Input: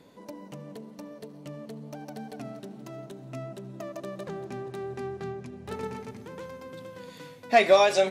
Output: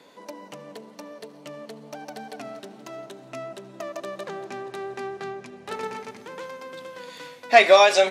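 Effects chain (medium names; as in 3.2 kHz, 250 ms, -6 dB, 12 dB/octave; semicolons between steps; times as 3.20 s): frequency weighting A; trim +6.5 dB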